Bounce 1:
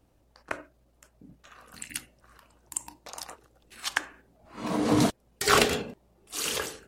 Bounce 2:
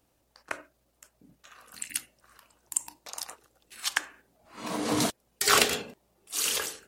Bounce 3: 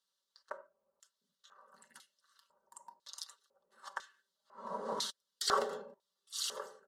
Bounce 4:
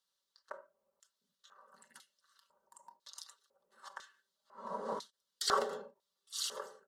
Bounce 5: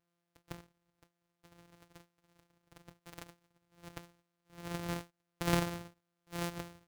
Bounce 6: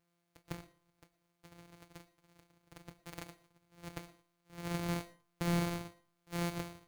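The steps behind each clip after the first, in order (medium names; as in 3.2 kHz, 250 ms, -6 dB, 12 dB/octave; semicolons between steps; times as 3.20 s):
tilt EQ +2 dB/octave; trim -2 dB
static phaser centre 480 Hz, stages 8; comb 5.2 ms, depth 58%; LFO band-pass square 1 Hz 710–3600 Hz; trim +1.5 dB
endings held to a fixed fall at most 280 dB/s
sorted samples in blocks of 256 samples; trim +1 dB
feedback comb 160 Hz, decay 0.19 s, harmonics all, mix 50%; saturation -35 dBFS, distortion -9 dB; on a send at -18.5 dB: reverberation RT60 0.35 s, pre-delay 68 ms; on the sum: trim +8 dB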